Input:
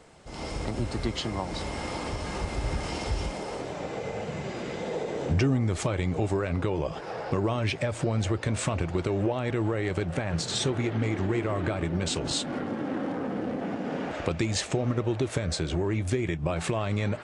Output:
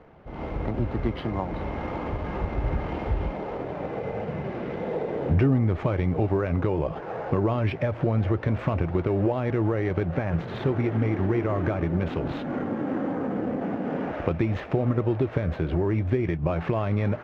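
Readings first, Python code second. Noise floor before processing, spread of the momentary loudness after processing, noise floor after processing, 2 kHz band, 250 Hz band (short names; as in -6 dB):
-38 dBFS, 7 LU, -37 dBFS, -1.0 dB, +3.5 dB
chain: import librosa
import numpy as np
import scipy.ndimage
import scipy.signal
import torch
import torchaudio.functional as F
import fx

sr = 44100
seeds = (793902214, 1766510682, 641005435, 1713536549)

p1 = scipy.signal.medfilt(x, 9)
p2 = fx.sample_hold(p1, sr, seeds[0], rate_hz=7800.0, jitter_pct=0)
p3 = p1 + (p2 * librosa.db_to_amplitude(-5.5))
y = fx.air_absorb(p3, sr, metres=280.0)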